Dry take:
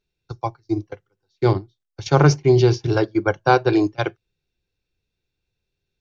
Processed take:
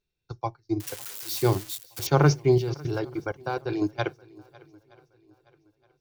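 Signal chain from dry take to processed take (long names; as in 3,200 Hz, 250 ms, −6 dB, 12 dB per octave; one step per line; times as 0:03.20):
0:00.80–0:02.07: spike at every zero crossing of −18.5 dBFS
0:02.58–0:03.82: output level in coarse steps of 23 dB
feedback echo with a long and a short gap by turns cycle 920 ms, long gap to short 1.5 to 1, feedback 32%, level −23.5 dB
level −5 dB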